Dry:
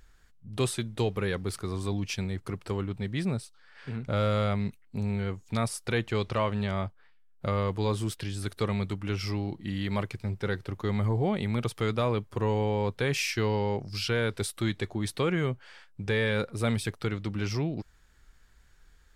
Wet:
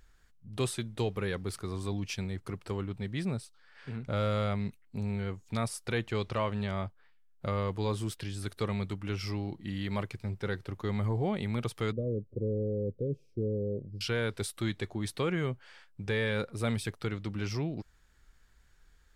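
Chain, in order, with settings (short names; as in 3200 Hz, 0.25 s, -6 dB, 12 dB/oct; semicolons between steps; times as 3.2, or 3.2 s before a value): 11.92–14.01 elliptic low-pass 540 Hz, stop band 40 dB; gain -3.5 dB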